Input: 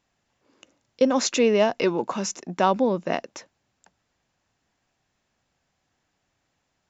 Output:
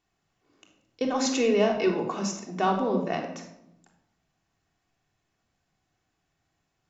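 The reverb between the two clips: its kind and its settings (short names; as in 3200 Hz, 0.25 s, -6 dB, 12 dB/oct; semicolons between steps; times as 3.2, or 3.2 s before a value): shoebox room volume 2300 m³, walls furnished, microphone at 3.4 m; gain -6.5 dB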